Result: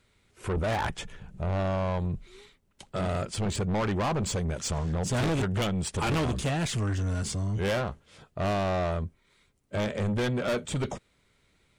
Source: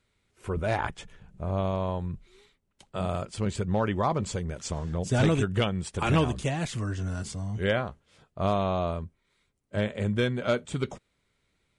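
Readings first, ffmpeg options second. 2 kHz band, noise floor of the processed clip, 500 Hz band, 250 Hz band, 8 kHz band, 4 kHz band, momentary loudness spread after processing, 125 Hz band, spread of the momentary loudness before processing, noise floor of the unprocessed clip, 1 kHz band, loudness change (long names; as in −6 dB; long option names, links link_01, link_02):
−0.5 dB, −68 dBFS, −1.0 dB, −1.0 dB, +4.5 dB, +1.0 dB, 9 LU, 0.0 dB, 11 LU, −75 dBFS, −1.0 dB, −0.5 dB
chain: -af "asoftclip=type=tanh:threshold=-31dB,volume=6.5dB"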